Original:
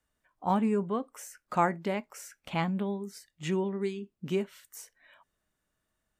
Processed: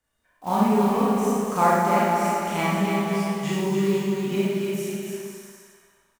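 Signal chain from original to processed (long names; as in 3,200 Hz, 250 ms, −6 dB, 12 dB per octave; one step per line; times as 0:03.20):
one scale factor per block 5 bits
bouncing-ball delay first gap 290 ms, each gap 0.7×, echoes 5
four-comb reverb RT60 1.3 s, combs from 27 ms, DRR −6.5 dB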